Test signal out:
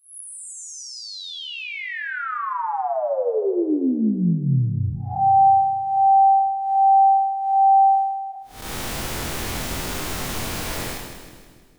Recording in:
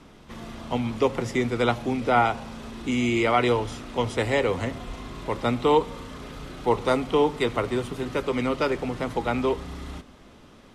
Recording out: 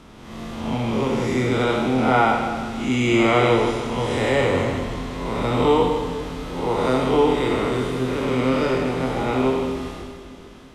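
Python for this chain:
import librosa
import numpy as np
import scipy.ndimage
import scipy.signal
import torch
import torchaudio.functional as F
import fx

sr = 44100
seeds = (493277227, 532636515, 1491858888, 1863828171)

y = fx.spec_blur(x, sr, span_ms=200.0)
y = fx.doubler(y, sr, ms=23.0, db=-5)
y = fx.echo_split(y, sr, split_hz=420.0, low_ms=231, high_ms=157, feedback_pct=52, wet_db=-8)
y = F.gain(torch.from_numpy(y), 5.5).numpy()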